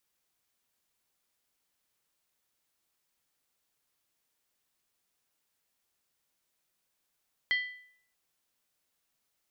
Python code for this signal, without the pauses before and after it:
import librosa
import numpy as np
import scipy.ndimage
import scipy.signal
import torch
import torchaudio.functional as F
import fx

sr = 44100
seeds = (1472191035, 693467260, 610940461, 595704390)

y = fx.strike_skin(sr, length_s=0.63, level_db=-23, hz=1990.0, decay_s=0.61, tilt_db=8.0, modes=5)